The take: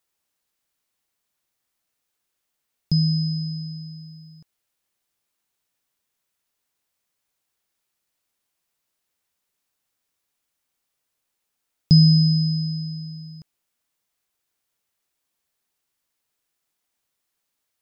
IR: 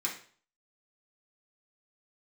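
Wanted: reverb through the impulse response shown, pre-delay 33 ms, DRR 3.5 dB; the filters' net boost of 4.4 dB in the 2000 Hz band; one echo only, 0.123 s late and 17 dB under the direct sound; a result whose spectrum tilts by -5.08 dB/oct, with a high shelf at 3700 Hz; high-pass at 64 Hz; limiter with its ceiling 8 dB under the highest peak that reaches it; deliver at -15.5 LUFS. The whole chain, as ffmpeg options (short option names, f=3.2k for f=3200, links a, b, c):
-filter_complex "[0:a]highpass=64,equalizer=f=2k:t=o:g=7.5,highshelf=f=3.7k:g=-5.5,alimiter=limit=-13.5dB:level=0:latency=1,aecho=1:1:123:0.141,asplit=2[a][b];[1:a]atrim=start_sample=2205,adelay=33[c];[b][c]afir=irnorm=-1:irlink=0,volume=-8dB[d];[a][d]amix=inputs=2:normalize=0,volume=9dB"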